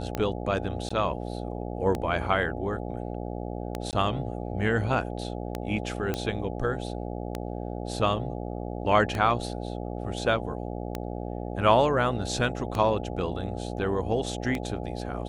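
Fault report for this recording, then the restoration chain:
mains buzz 60 Hz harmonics 14 −34 dBFS
scratch tick 33 1/3 rpm −15 dBFS
0:00.89–0:00.91: drop-out 15 ms
0:03.91–0:03.93: drop-out 18 ms
0:06.14: click −14 dBFS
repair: click removal
hum removal 60 Hz, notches 14
repair the gap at 0:00.89, 15 ms
repair the gap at 0:03.91, 18 ms

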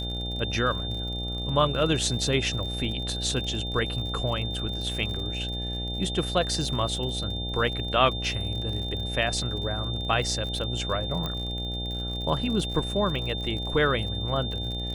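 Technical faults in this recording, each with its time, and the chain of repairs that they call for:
mains buzz 60 Hz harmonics 14 −33 dBFS
surface crackle 53 per second −34 dBFS
whistle 3,600 Hz −33 dBFS
0:11.26: click −17 dBFS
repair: click removal
notch filter 3,600 Hz, Q 30
hum removal 60 Hz, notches 14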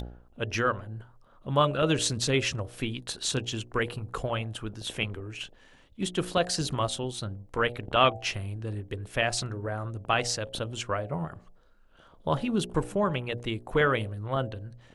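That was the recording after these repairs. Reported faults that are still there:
none of them is left

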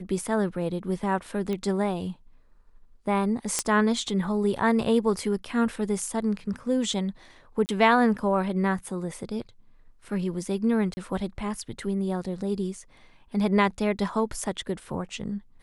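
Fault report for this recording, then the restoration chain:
0:01.53: click −19 dBFS
0:03.59: click −9 dBFS
0:07.66–0:07.69: drop-out 29 ms
0:10.94–0:10.97: drop-out 30 ms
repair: click removal
repair the gap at 0:07.66, 29 ms
repair the gap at 0:10.94, 30 ms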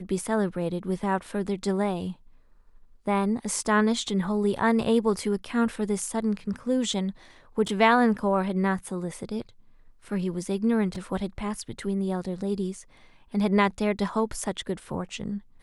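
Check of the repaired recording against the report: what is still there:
none of them is left

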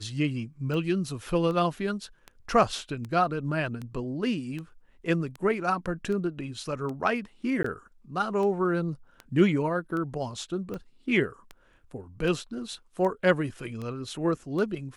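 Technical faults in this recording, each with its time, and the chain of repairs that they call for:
scratch tick 78 rpm −24 dBFS
0:07.63–0:07.64: drop-out 14 ms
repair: click removal
repair the gap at 0:07.63, 14 ms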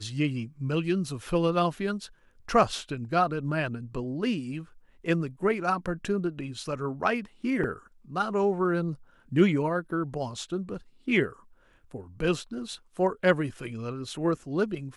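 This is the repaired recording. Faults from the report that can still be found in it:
none of them is left

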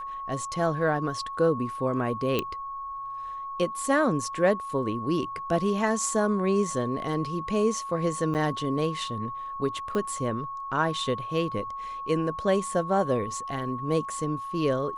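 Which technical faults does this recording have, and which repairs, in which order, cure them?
whistle 1,100 Hz −33 dBFS
0:02.39: click −12 dBFS
0:08.34–0:08.35: drop-out 8.4 ms
0:09.95: click −18 dBFS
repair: click removal
notch filter 1,100 Hz, Q 30
repair the gap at 0:08.34, 8.4 ms

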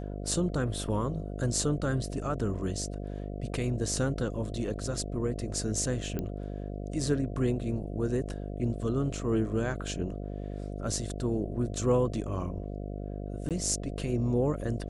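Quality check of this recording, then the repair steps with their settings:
mains buzz 50 Hz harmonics 14 −37 dBFS
0:06.19: click −20 dBFS
0:13.49–0:13.51: drop-out 17 ms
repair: click removal
hum removal 50 Hz, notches 14
repair the gap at 0:13.49, 17 ms

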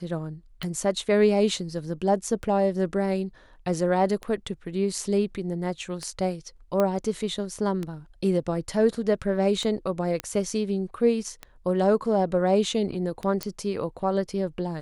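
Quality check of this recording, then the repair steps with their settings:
scratch tick 33 1/3 rpm −18 dBFS
0:06.80: click −12 dBFS
0:10.20: click −14 dBFS
0:13.43: click −12 dBFS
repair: click removal

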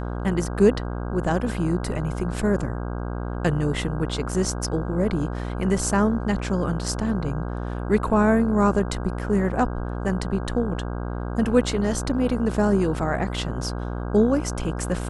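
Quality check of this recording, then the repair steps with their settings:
mains buzz 60 Hz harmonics 27 −29 dBFS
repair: hum removal 60 Hz, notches 27

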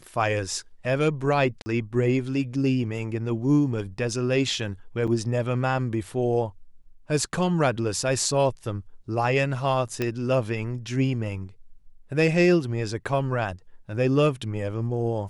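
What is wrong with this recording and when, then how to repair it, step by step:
0:01.62–0:01.66: drop-out 40 ms
0:05.07–0:05.08: drop-out 6.1 ms
0:10.02: click −13 dBFS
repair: click removal
repair the gap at 0:01.62, 40 ms
repair the gap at 0:05.07, 6.1 ms

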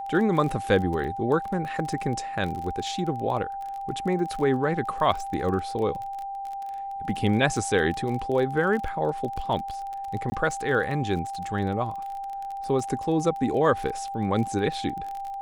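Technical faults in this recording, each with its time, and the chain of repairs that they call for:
surface crackle 25 per second −31 dBFS
whistle 790 Hz −31 dBFS
0:10.30–0:10.32: drop-out 20 ms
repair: click removal
notch filter 790 Hz, Q 30
repair the gap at 0:10.30, 20 ms

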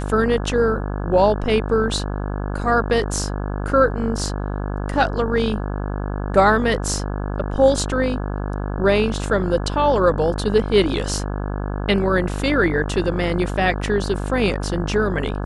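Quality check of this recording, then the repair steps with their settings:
mains buzz 50 Hz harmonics 34 −25 dBFS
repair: hum removal 50 Hz, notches 34

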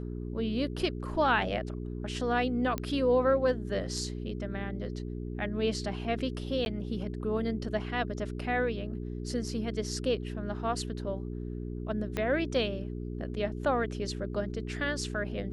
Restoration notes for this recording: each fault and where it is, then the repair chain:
mains hum 60 Hz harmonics 7 −37 dBFS
0:02.78: click −18 dBFS
0:06.65–0:06.66: drop-out 11 ms
0:12.17: click −18 dBFS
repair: click removal
hum removal 60 Hz, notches 7
repair the gap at 0:06.65, 11 ms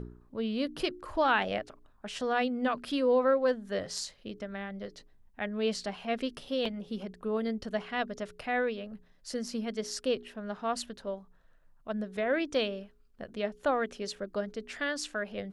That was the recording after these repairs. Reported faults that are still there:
0:12.17: click

